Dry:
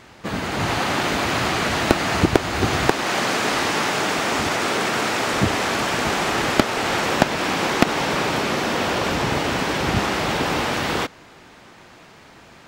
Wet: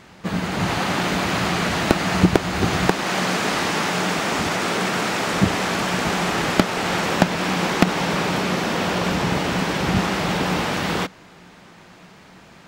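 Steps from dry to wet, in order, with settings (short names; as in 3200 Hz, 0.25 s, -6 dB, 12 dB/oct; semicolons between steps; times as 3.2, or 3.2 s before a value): bell 180 Hz +12 dB 0.24 oct; gain -1 dB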